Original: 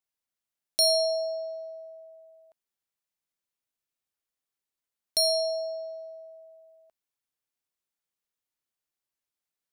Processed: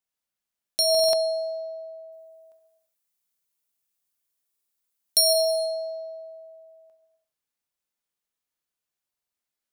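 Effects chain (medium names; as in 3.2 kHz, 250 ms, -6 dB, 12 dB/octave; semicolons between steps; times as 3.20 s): 2.12–5.33 s: treble shelf 6.5 kHz +11.5 dB; gated-style reverb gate 440 ms falling, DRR 3.5 dB; buffer glitch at 0.90/4.46/9.10 s, samples 2048, times 4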